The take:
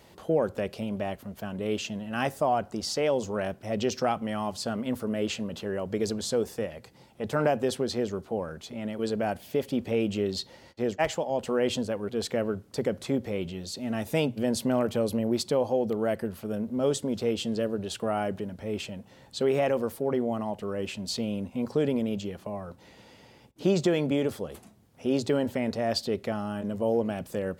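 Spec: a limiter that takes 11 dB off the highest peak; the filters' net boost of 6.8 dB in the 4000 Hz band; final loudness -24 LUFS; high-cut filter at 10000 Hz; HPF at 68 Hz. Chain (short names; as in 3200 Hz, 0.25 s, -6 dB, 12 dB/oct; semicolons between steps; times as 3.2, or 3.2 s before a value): HPF 68 Hz; LPF 10000 Hz; bell 4000 Hz +8.5 dB; gain +8.5 dB; limiter -13 dBFS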